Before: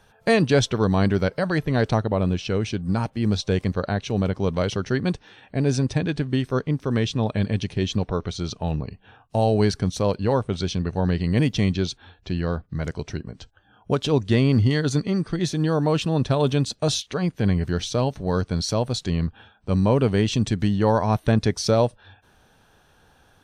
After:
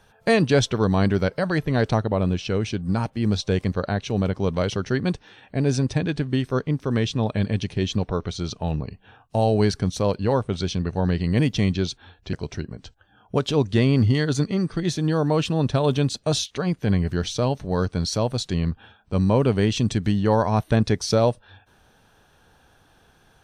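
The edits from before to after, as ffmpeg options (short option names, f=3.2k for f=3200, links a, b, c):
-filter_complex "[0:a]asplit=2[a][b];[a]atrim=end=12.332[c];[b]atrim=start=12.888[d];[c][d]acrossfade=d=0.004:c1=hsin:c2=hsin"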